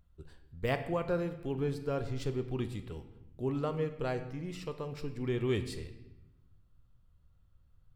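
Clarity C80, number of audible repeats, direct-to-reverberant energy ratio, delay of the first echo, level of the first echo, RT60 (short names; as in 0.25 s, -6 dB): 13.0 dB, none, 8.0 dB, none, none, 0.95 s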